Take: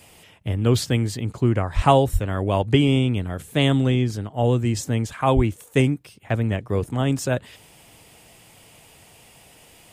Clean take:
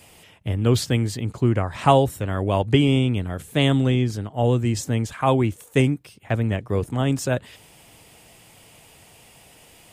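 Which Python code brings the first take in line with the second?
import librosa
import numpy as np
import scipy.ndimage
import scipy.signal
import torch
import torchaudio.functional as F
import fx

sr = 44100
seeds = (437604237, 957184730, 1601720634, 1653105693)

y = fx.highpass(x, sr, hz=140.0, slope=24, at=(1.75, 1.87), fade=0.02)
y = fx.highpass(y, sr, hz=140.0, slope=24, at=(2.12, 2.24), fade=0.02)
y = fx.highpass(y, sr, hz=140.0, slope=24, at=(5.35, 5.47), fade=0.02)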